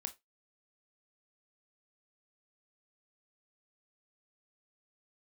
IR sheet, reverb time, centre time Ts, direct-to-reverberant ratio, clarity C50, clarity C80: 0.20 s, 6 ms, 7.5 dB, 18.0 dB, 27.5 dB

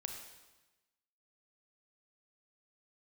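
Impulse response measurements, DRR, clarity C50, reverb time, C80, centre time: 3.5 dB, 5.0 dB, 1.1 s, 6.5 dB, 35 ms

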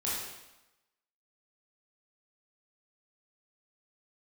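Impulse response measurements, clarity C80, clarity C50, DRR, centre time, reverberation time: 2.5 dB, -0.5 dB, -7.5 dB, 78 ms, 0.95 s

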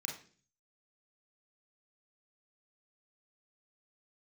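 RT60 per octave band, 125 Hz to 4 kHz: 0.75 s, 0.60 s, 0.50 s, 0.35 s, 0.40 s, 0.50 s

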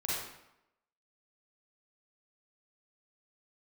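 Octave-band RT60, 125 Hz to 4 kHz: 0.75 s, 0.80 s, 0.85 s, 0.85 s, 0.75 s, 0.65 s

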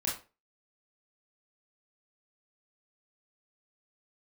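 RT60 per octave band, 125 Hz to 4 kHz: 0.30 s, 0.35 s, 0.35 s, 0.30 s, 0.30 s, 0.25 s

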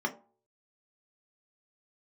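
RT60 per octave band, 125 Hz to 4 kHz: 0.50 s, 0.40 s, 0.45 s, 0.45 s, 0.20 s, 0.15 s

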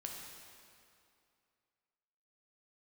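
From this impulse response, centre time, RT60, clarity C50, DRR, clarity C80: 94 ms, 2.5 s, 1.5 dB, -0.5 dB, 2.5 dB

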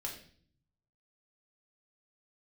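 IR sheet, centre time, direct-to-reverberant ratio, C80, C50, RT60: 24 ms, -0.5 dB, 11.0 dB, 7.5 dB, 0.50 s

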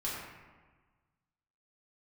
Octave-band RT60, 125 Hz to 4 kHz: 1.8 s, 1.5 s, 1.3 s, 1.4 s, 1.2 s, 0.80 s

